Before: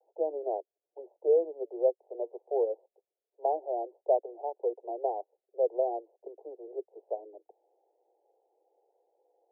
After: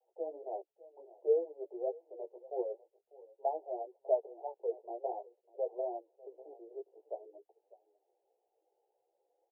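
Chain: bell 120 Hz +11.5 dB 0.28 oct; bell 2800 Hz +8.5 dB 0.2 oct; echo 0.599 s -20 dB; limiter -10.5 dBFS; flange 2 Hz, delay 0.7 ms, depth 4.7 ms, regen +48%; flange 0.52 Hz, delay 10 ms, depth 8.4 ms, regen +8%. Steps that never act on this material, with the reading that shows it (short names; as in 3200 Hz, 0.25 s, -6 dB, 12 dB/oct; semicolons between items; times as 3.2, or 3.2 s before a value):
bell 120 Hz: input band starts at 300 Hz; bell 2800 Hz: input band ends at 960 Hz; limiter -10.5 dBFS: input peak -14.5 dBFS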